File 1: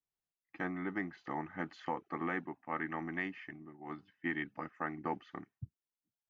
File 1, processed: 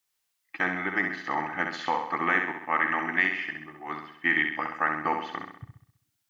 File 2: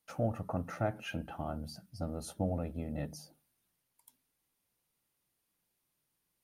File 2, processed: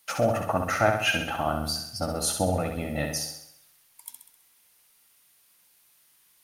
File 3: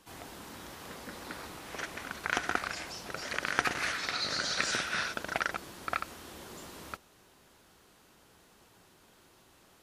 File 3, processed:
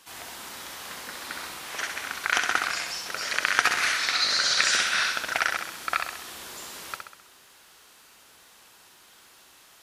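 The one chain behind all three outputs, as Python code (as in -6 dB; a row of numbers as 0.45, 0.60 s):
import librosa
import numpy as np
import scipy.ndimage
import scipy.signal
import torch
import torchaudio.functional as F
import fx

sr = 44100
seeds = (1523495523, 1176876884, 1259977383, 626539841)

p1 = fx.tilt_shelf(x, sr, db=-8.0, hz=660.0)
p2 = p1 + fx.room_flutter(p1, sr, wall_m=11.2, rt60_s=0.69, dry=0)
y = p2 * 10.0 ** (-30 / 20.0) / np.sqrt(np.mean(np.square(p2)))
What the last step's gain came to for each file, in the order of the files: +8.5, +11.5, +1.5 dB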